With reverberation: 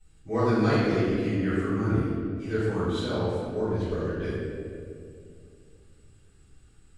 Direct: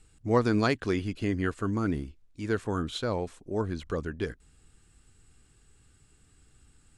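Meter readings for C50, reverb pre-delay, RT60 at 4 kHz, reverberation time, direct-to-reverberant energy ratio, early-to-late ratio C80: -4.0 dB, 3 ms, 1.3 s, 2.4 s, -16.0 dB, -1.0 dB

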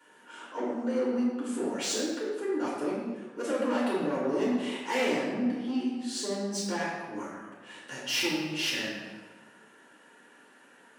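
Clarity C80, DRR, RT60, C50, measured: 2.0 dB, -7.5 dB, 1.4 s, 0.0 dB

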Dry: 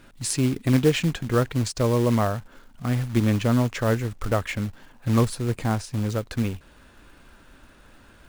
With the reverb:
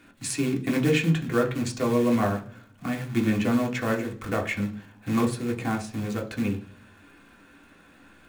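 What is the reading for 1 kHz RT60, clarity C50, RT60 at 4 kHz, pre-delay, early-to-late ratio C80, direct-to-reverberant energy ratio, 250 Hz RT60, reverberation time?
0.40 s, 13.5 dB, 0.55 s, 3 ms, 18.5 dB, 0.5 dB, 0.65 s, 0.45 s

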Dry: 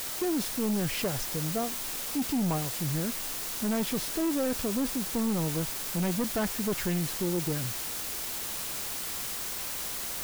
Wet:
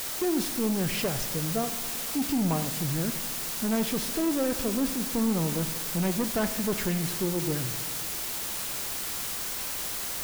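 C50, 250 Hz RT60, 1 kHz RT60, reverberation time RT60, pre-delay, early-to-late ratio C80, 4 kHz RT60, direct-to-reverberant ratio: 11.0 dB, 1.7 s, 1.7 s, 1.7 s, 8 ms, 12.0 dB, 1.6 s, 9.5 dB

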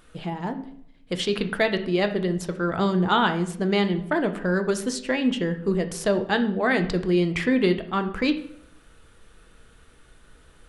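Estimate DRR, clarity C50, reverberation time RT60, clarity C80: 7.0 dB, 12.5 dB, 0.70 s, 15.5 dB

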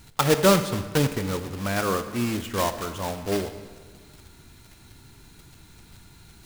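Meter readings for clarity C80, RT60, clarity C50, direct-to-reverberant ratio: 12.0 dB, 1.6 s, 10.5 dB, 9.0 dB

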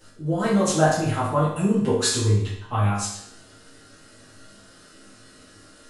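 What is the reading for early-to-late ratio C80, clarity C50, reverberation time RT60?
6.0 dB, 2.0 dB, 0.70 s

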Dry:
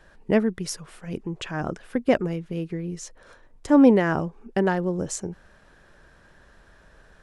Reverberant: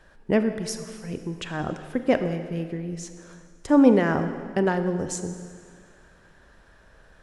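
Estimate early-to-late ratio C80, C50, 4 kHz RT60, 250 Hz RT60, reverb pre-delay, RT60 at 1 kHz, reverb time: 10.5 dB, 9.5 dB, 1.9 s, 2.1 s, 23 ms, 2.0 s, 2.0 s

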